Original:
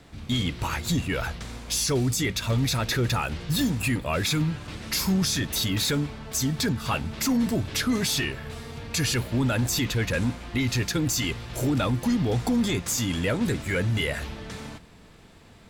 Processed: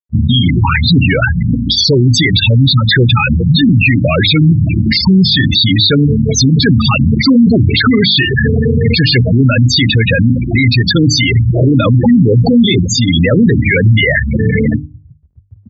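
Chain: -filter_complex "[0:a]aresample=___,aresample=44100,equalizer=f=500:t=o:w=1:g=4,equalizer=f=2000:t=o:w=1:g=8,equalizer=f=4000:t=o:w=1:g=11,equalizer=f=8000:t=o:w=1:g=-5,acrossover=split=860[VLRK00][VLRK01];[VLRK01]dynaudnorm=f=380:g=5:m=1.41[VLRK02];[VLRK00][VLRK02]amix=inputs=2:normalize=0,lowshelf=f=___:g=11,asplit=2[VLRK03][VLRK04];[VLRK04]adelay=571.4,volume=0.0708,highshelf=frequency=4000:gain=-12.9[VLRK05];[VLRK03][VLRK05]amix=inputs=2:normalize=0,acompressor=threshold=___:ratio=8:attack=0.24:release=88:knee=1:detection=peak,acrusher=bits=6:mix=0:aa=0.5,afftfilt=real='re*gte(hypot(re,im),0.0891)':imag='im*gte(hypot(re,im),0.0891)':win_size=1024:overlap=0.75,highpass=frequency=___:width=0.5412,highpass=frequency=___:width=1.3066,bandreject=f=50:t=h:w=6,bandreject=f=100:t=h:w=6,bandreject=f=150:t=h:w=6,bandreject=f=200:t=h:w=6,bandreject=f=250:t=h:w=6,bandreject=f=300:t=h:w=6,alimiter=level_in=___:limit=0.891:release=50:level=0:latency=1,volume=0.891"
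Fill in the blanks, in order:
22050, 350, 0.0708, 87, 87, 16.8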